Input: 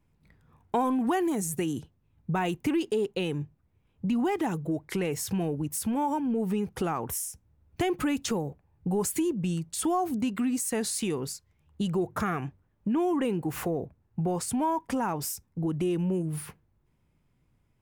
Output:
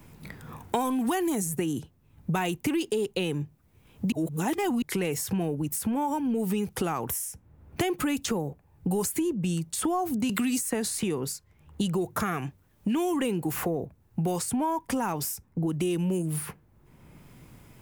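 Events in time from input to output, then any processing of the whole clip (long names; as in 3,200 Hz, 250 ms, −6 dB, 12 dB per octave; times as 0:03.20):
0:04.12–0:04.82: reverse
0:10.29–0:11.03: multiband upward and downward compressor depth 70%
whole clip: high-shelf EQ 8,200 Hz +8 dB; multiband upward and downward compressor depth 70%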